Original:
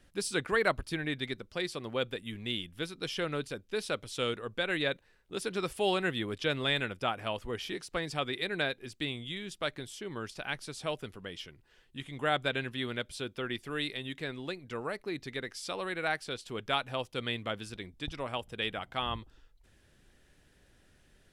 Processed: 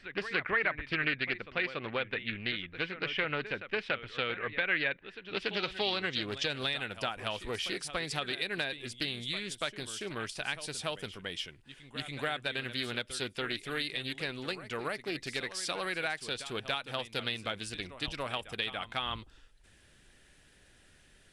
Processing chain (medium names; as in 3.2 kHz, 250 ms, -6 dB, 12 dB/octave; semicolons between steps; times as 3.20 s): peaking EQ 2.6 kHz +6 dB 2.2 oct; compression 8:1, threshold -30 dBFS, peak gain reduction 11 dB; low-pass sweep 2.1 kHz -> 9.6 kHz, 5.19–6.73 s; on a send: reverse echo 285 ms -13 dB; on the sum: loudspeaker Doppler distortion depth 0.33 ms